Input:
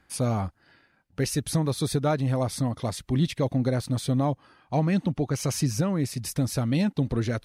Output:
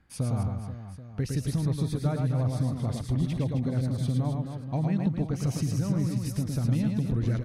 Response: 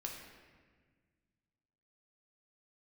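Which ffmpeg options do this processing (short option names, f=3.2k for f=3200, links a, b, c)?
-filter_complex "[0:a]bass=f=250:g=10,treble=f=4k:g=-3,acompressor=threshold=-18dB:ratio=6,aecho=1:1:110|264|479.6|781.4|1204:0.631|0.398|0.251|0.158|0.1,asettb=1/sr,asplit=3[a][b][c];[a]atrim=end=0.434[d];[b]atrim=start=0.43:end=2.93,asetpts=PTS-STARTPTS,afade=t=in:d=0.004:c=qsin,afade=t=out:st=2.496:d=0.004:c=qsin,adynamicequalizer=threshold=0.00501:dfrequency=3500:dqfactor=0.7:tfrequency=3500:tqfactor=0.7:attack=5:release=100:ratio=0.375:range=2:mode=cutabove:tftype=highshelf[e];[c]atrim=start=2.926[f];[d][e]acrossfade=d=0.004:c1=hsin:c2=qsin[g];[g][f]acrossfade=d=0.004:c1=qsin:c2=hsin,volume=-6.5dB"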